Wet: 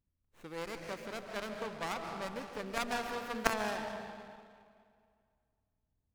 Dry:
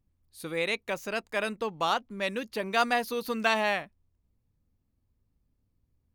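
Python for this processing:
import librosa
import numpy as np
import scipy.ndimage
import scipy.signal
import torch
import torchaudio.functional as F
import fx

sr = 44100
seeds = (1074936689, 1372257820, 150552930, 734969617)

y = fx.cheby_harmonics(x, sr, harmonics=(3, 4, 6), levels_db=(-13, -11, -22), full_scale_db=-10.5)
y = fx.rev_freeverb(y, sr, rt60_s=2.2, hf_ratio=0.65, predelay_ms=100, drr_db=6.0)
y = fx.running_max(y, sr, window=9)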